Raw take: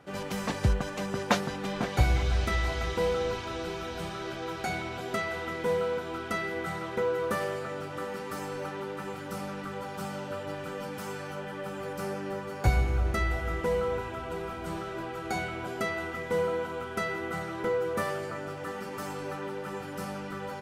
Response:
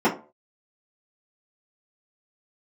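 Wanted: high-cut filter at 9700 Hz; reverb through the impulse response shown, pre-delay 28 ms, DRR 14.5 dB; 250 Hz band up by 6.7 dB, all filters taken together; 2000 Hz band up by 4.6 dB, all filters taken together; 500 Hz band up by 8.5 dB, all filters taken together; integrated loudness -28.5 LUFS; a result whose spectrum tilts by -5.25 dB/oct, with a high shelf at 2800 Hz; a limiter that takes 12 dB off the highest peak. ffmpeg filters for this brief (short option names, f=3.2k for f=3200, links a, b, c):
-filter_complex "[0:a]lowpass=9.7k,equalizer=f=250:t=o:g=7,equalizer=f=500:t=o:g=7.5,equalizer=f=2k:t=o:g=6,highshelf=f=2.8k:g=-3.5,alimiter=limit=-16dB:level=0:latency=1,asplit=2[a][b];[1:a]atrim=start_sample=2205,adelay=28[c];[b][c]afir=irnorm=-1:irlink=0,volume=-32.5dB[d];[a][d]amix=inputs=2:normalize=0,volume=-1.5dB"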